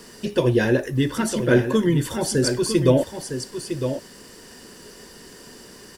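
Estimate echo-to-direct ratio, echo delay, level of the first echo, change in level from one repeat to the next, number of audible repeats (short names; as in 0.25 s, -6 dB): -8.5 dB, 0.957 s, -8.5 dB, no steady repeat, 1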